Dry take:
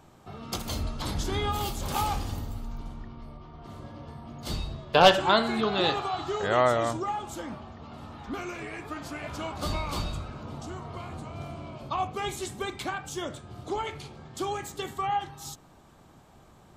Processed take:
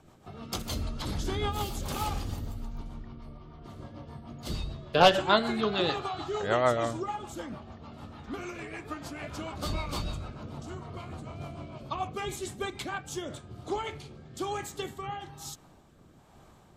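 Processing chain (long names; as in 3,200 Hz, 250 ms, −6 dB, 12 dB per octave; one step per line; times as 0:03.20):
rotating-speaker cabinet horn 6.7 Hz, later 1.1 Hz, at 0:12.83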